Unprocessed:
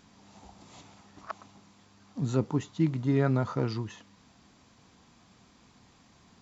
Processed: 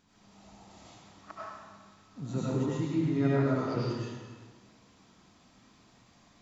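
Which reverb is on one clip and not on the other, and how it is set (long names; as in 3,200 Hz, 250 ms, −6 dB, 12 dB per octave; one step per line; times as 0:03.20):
comb and all-pass reverb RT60 1.5 s, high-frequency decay 0.9×, pre-delay 55 ms, DRR −8.5 dB
level −9.5 dB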